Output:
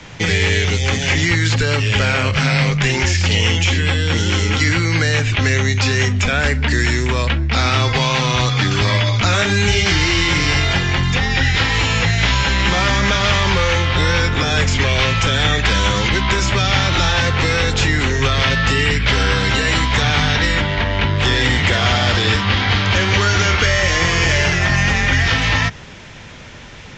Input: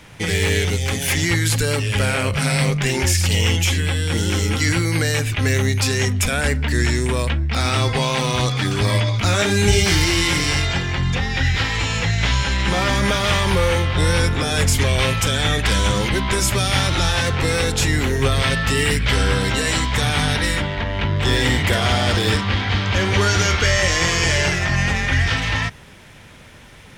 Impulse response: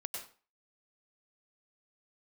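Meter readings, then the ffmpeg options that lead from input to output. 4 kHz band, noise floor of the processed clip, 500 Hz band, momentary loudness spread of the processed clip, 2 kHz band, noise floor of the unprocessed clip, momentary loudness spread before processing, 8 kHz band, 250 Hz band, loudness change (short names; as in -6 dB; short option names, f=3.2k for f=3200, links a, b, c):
+4.0 dB, -35 dBFS, +1.0 dB, 2 LU, +4.5 dB, -42 dBFS, 4 LU, -1.5 dB, +1.5 dB, +3.0 dB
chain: -filter_complex "[0:a]acrossover=split=160|950|3700[a][b][c][d];[a]acompressor=threshold=-24dB:ratio=4[e];[b]acompressor=threshold=-29dB:ratio=4[f];[c]acompressor=threshold=-23dB:ratio=4[g];[d]acompressor=threshold=-34dB:ratio=4[h];[e][f][g][h]amix=inputs=4:normalize=0,volume=6.5dB" -ar 16000 -c:a libvorbis -b:a 48k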